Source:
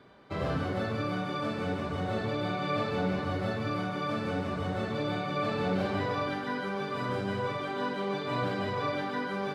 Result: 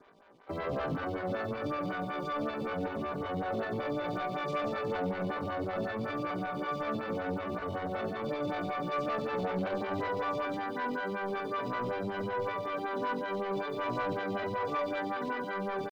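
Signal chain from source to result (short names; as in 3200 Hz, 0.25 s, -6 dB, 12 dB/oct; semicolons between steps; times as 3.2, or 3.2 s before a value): LPF 4000 Hz 12 dB/oct; low shelf 270 Hz -4.5 dB; sample leveller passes 2; tempo 0.6×; photocell phaser 5.3 Hz; gain -3.5 dB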